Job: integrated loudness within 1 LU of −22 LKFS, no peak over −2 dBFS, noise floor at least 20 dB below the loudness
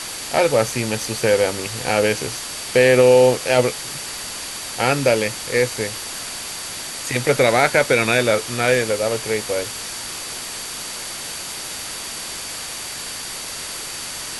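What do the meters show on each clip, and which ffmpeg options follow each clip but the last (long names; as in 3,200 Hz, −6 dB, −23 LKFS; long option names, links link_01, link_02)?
interfering tone 4,600 Hz; level of the tone −37 dBFS; background noise floor −31 dBFS; target noise floor −41 dBFS; integrated loudness −20.5 LKFS; sample peak −1.5 dBFS; target loudness −22.0 LKFS
→ -af "bandreject=frequency=4600:width=30"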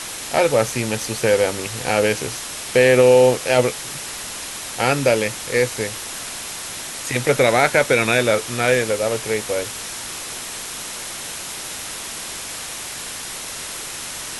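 interfering tone none found; background noise floor −31 dBFS; target noise floor −41 dBFS
→ -af "afftdn=noise_reduction=10:noise_floor=-31"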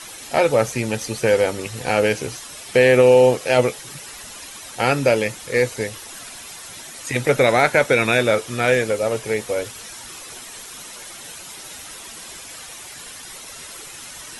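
background noise floor −38 dBFS; target noise floor −39 dBFS
→ -af "afftdn=noise_reduction=6:noise_floor=-38"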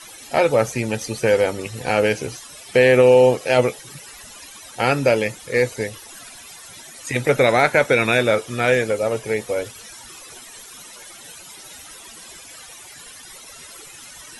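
background noise floor −41 dBFS; integrated loudness −18.5 LKFS; sample peak −1.5 dBFS; target loudness −22.0 LKFS
→ -af "volume=-3.5dB"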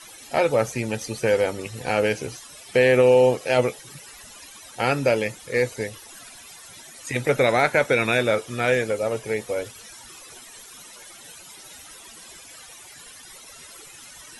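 integrated loudness −22.0 LKFS; sample peak −5.0 dBFS; background noise floor −45 dBFS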